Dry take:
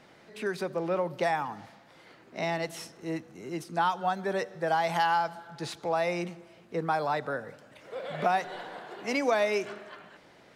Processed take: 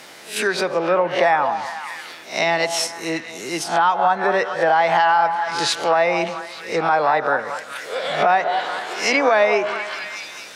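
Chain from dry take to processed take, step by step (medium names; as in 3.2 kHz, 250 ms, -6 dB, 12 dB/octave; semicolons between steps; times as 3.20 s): reverse spectral sustain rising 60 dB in 0.33 s; repeats whose band climbs or falls 216 ms, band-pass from 760 Hz, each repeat 0.7 oct, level -8 dB; low-pass that closes with the level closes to 1.9 kHz, closed at -24 dBFS; RIAA curve recording; loudness maximiser +18.5 dB; trim -6 dB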